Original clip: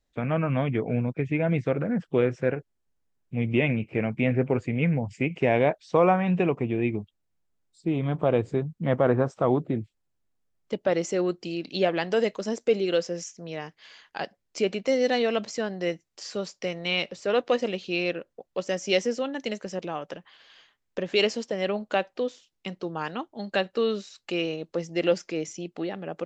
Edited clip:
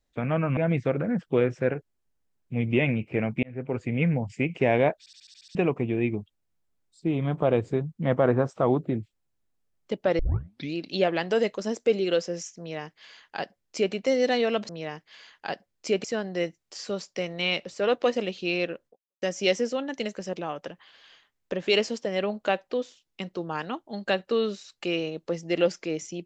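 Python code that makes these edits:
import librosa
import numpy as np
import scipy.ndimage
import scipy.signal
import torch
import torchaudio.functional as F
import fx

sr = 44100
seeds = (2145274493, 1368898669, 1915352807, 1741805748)

y = fx.edit(x, sr, fx.cut(start_s=0.57, length_s=0.81),
    fx.fade_in_span(start_s=4.24, length_s=0.51),
    fx.stutter_over(start_s=5.8, slice_s=0.07, count=8),
    fx.tape_start(start_s=11.0, length_s=0.56),
    fx.duplicate(start_s=13.4, length_s=1.35, to_s=15.5),
    fx.fade_out_span(start_s=18.34, length_s=0.34, curve='exp'), tone=tone)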